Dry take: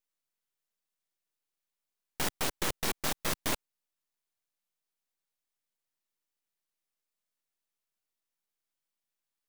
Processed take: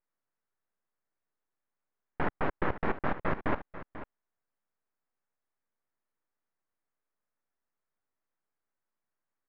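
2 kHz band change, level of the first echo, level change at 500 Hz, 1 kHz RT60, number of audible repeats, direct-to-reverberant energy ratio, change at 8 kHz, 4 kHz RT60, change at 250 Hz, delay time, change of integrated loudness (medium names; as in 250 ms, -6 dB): +1.0 dB, -13.5 dB, +4.5 dB, no reverb, 1, no reverb, under -40 dB, no reverb, +4.5 dB, 491 ms, -1.0 dB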